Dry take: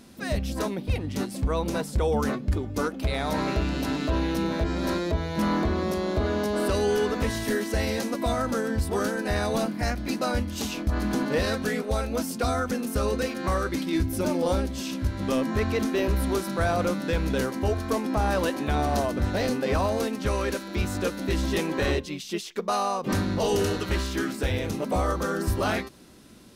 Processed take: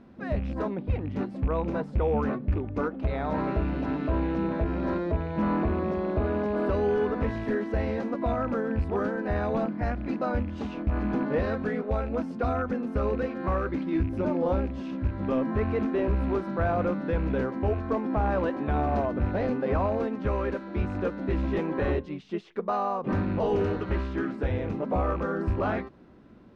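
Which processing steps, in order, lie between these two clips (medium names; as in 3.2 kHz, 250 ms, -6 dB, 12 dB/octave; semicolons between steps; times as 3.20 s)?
rattle on loud lows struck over -28 dBFS, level -29 dBFS; low-pass 1.5 kHz 12 dB/octave; trim -1 dB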